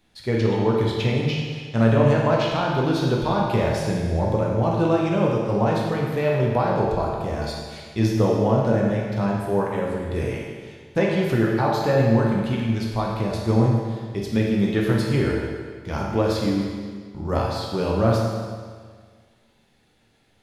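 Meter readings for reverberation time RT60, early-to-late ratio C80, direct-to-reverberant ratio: 1.7 s, 2.0 dB, −3.5 dB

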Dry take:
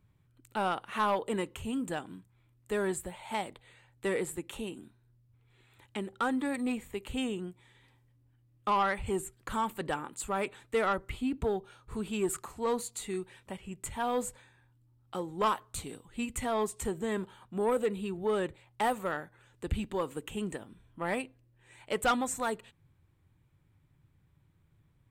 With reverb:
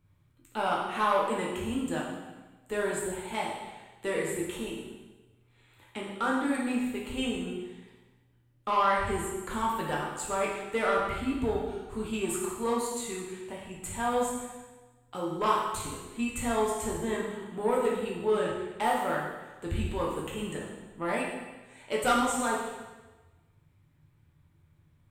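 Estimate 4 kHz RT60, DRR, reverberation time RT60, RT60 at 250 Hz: 1.1 s, −4.0 dB, 1.2 s, 1.1 s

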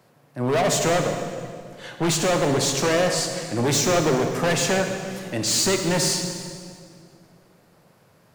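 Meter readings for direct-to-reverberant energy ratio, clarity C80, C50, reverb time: 4.5 dB, 6.0 dB, 5.0 dB, 2.2 s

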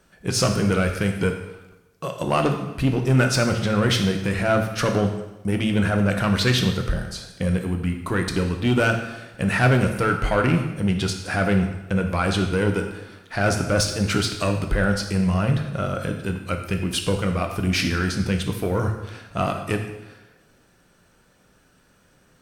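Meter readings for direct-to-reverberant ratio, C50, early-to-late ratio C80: 4.0 dB, 7.0 dB, 9.0 dB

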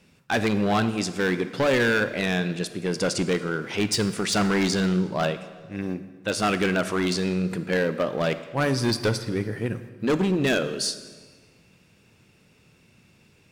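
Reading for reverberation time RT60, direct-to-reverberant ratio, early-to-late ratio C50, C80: 1.5 s, 11.0 dB, 12.5 dB, 14.0 dB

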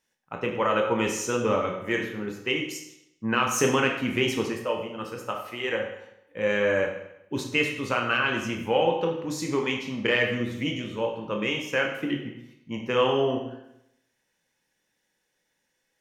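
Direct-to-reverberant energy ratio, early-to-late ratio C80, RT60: 1.0 dB, 8.0 dB, 0.80 s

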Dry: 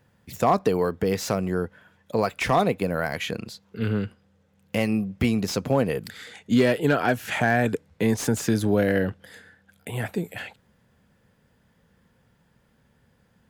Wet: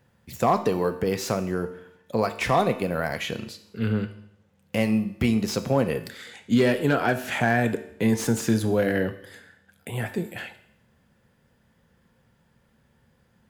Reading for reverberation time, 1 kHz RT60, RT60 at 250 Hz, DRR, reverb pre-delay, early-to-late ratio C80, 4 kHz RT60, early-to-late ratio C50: 0.75 s, 0.75 s, 0.75 s, 8.0 dB, 3 ms, 15.5 dB, 0.70 s, 12.5 dB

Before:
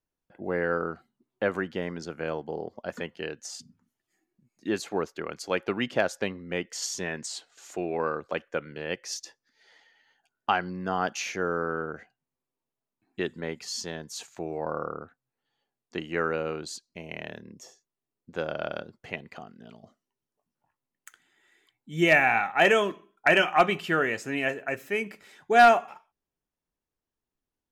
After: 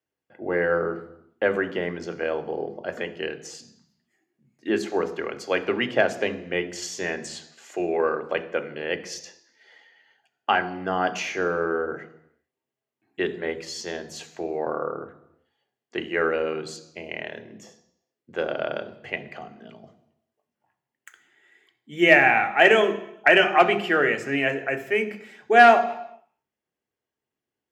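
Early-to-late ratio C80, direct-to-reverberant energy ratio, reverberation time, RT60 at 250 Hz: 16.5 dB, 9.0 dB, 0.80 s, 0.80 s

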